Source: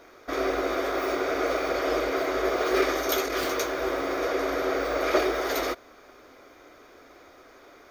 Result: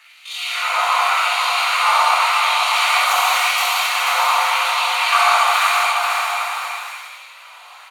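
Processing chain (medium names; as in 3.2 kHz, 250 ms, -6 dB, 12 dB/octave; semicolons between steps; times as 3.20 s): pitch shift +11 st; LFO high-pass sine 0.89 Hz 890–3500 Hz; on a send: bouncing-ball echo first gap 490 ms, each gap 0.7×, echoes 5; on the sum: gated-style reverb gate 300 ms flat, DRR -6 dB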